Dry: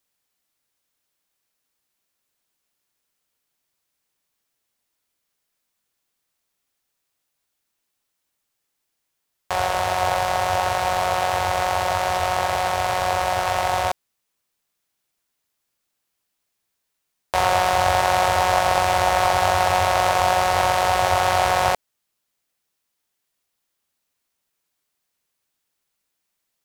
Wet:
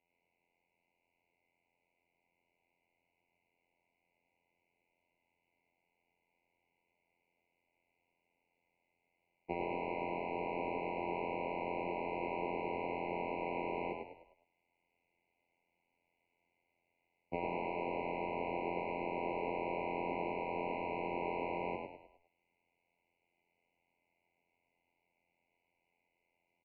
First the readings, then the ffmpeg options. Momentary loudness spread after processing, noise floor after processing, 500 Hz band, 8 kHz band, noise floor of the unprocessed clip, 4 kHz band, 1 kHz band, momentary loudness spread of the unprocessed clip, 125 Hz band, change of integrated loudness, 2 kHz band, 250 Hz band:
3 LU, -84 dBFS, -15.0 dB, under -40 dB, -78 dBFS, -30.0 dB, -21.0 dB, 4 LU, -20.0 dB, -19.0 dB, -20.5 dB, -5.0 dB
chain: -filter_complex "[0:a]aemphasis=mode=production:type=riaa,acrossover=split=140[a][b];[b]acompressor=threshold=-32dB:ratio=12[c];[a][c]amix=inputs=2:normalize=0,aeval=exprs='0.141*(abs(mod(val(0)/0.141+3,4)-2)-1)':c=same,afftfilt=real='hypot(re,im)*cos(PI*b)':imag='0':win_size=2048:overlap=0.75,asplit=2[d][e];[e]asplit=5[f][g][h][i][j];[f]adelay=102,afreqshift=50,volume=-4dB[k];[g]adelay=204,afreqshift=100,volume=-11.7dB[l];[h]adelay=306,afreqshift=150,volume=-19.5dB[m];[i]adelay=408,afreqshift=200,volume=-27.2dB[n];[j]adelay=510,afreqshift=250,volume=-35dB[o];[k][l][m][n][o]amix=inputs=5:normalize=0[p];[d][p]amix=inputs=2:normalize=0,highpass=f=380:t=q:w=0.5412,highpass=f=380:t=q:w=1.307,lowpass=f=2.6k:t=q:w=0.5176,lowpass=f=2.6k:t=q:w=0.7071,lowpass=f=2.6k:t=q:w=1.932,afreqshift=-340,afftfilt=real='re*eq(mod(floor(b*sr/1024/1000),2),0)':imag='im*eq(mod(floor(b*sr/1024/1000),2),0)':win_size=1024:overlap=0.75,volume=7.5dB"

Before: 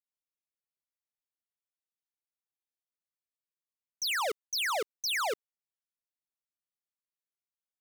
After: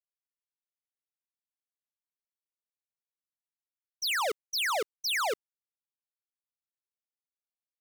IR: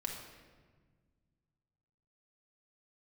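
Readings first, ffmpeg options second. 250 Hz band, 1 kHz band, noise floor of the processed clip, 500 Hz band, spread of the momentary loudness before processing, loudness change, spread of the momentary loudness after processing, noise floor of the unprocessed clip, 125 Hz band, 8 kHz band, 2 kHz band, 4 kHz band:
+1.5 dB, +1.5 dB, under -85 dBFS, +1.5 dB, 5 LU, +1.5 dB, 5 LU, under -85 dBFS, n/a, -0.5 dB, +1.5 dB, +1.5 dB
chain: -af "agate=range=-33dB:threshold=-31dB:ratio=3:detection=peak,volume=3dB"

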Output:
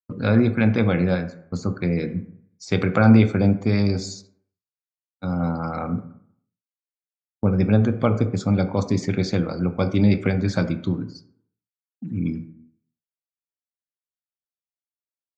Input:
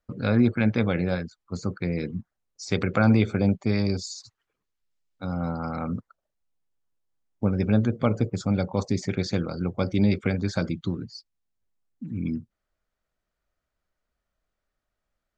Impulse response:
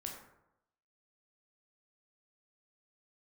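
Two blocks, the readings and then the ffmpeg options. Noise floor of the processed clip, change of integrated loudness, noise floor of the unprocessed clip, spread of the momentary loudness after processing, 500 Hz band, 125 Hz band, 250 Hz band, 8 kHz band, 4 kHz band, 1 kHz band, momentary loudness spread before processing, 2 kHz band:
under -85 dBFS, +4.5 dB, -83 dBFS, 12 LU, +4.0 dB, +5.0 dB, +4.0 dB, n/a, +1.5 dB, +4.0 dB, 14 LU, +3.5 dB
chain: -filter_complex "[0:a]highpass=87,agate=range=-33dB:threshold=-35dB:ratio=3:detection=peak,asplit=2[a][b];[b]highshelf=f=3.9k:g=-11[c];[1:a]atrim=start_sample=2205,asetrate=57330,aresample=44100[d];[c][d]afir=irnorm=-1:irlink=0,volume=2dB[e];[a][e]amix=inputs=2:normalize=0"

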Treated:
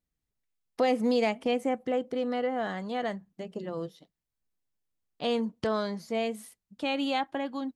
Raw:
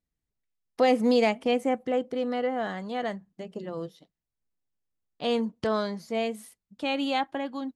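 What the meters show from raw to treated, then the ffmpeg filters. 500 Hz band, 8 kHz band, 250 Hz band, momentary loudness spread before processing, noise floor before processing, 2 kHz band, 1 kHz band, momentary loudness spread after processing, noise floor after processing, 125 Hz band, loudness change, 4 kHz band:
-2.5 dB, n/a, -2.0 dB, 16 LU, under -85 dBFS, -2.0 dB, -2.5 dB, 13 LU, under -85 dBFS, -1.0 dB, -2.5 dB, -2.0 dB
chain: -af "acompressor=threshold=-28dB:ratio=1.5"

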